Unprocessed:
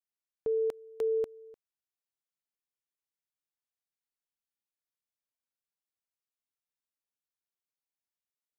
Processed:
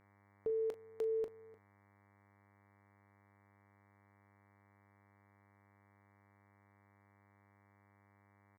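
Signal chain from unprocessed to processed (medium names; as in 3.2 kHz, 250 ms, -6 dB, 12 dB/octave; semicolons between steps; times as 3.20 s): mains buzz 100 Hz, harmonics 23, -64 dBFS -3 dB/octave; on a send: early reflections 21 ms -18 dB, 39 ms -13 dB; on the sum: trim -5.5 dB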